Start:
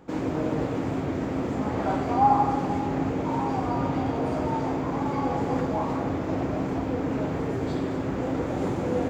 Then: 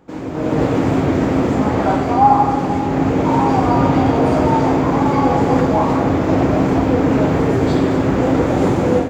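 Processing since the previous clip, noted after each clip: AGC gain up to 14 dB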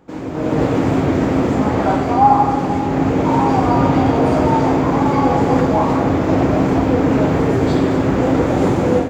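nothing audible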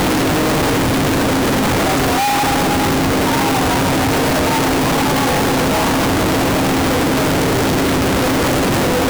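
infinite clipping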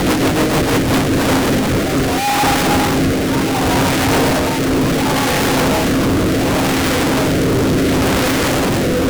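rotary speaker horn 6.7 Hz, later 0.7 Hz, at 0.49; gain +2.5 dB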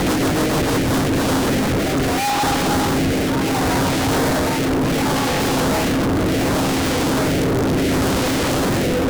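soft clip -15 dBFS, distortion -15 dB

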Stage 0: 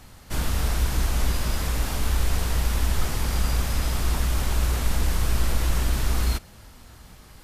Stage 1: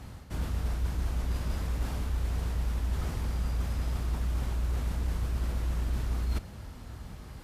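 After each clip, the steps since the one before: HPF 54 Hz; reverse; compressor 6:1, threshold -35 dBFS, peak gain reduction 13.5 dB; reverse; tilt -2 dB/oct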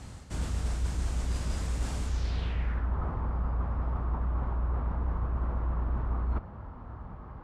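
low-pass sweep 8000 Hz -> 1100 Hz, 2.05–2.94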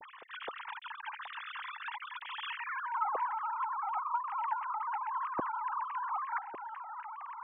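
sine-wave speech; gain -7.5 dB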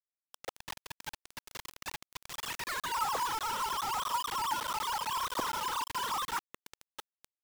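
bit-crush 6-bit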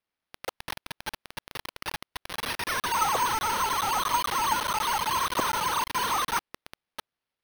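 careless resampling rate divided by 6×, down none, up hold; gain +7 dB

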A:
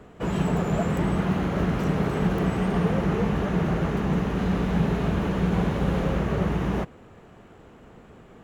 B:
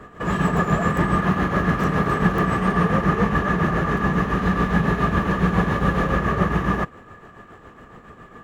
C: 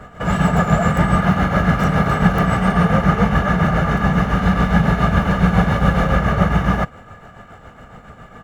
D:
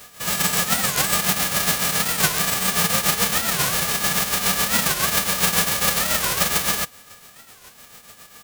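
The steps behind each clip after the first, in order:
tremolo triangle 7.2 Hz, depth 60%; small resonant body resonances 1200/1700 Hz, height 16 dB, ringing for 35 ms; gain +5.5 dB
comb 1.4 ms, depth 60%; gain +3.5 dB
spectral whitening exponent 0.1; record warp 45 rpm, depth 250 cents; gain -5.5 dB

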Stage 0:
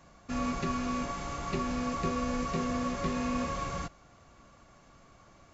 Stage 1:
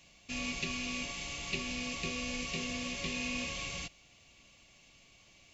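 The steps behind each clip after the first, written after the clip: resonant high shelf 1900 Hz +11 dB, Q 3; gain -8 dB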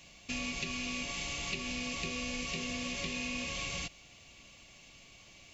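compressor, threshold -39 dBFS, peak gain reduction 9 dB; gain +5 dB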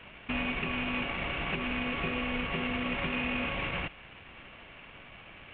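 CVSD 16 kbps; gain +6.5 dB

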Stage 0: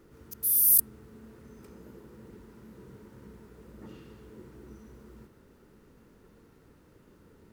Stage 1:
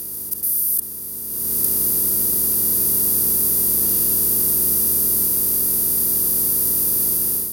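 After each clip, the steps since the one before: per-bin compression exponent 0.2; AGC gain up to 11.5 dB; gain -1 dB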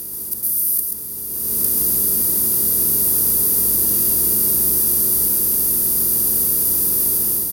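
echo 0.133 s -4.5 dB

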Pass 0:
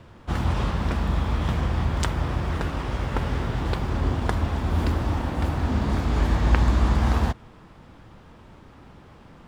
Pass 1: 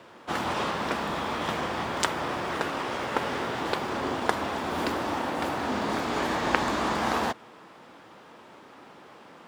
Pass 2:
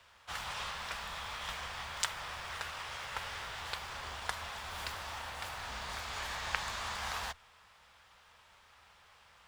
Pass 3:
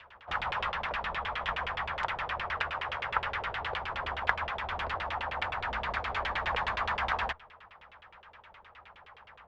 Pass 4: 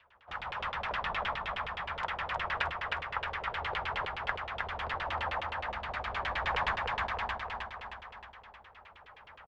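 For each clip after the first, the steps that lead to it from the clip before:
HPF 350 Hz 12 dB/oct; gain +3.5 dB
octaver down 2 oct, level -5 dB; passive tone stack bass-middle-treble 10-0-10; gain -3 dB
LFO low-pass saw down 9.6 Hz 410–3200 Hz; gain +6 dB
tremolo saw up 0.74 Hz, depth 75%; on a send: feedback echo 0.312 s, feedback 55%, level -3 dB

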